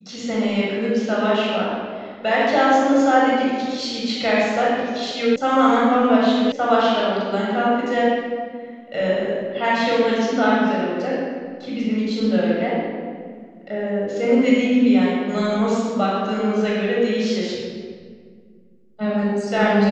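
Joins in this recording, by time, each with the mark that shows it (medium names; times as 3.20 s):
5.36 s: sound stops dead
6.52 s: sound stops dead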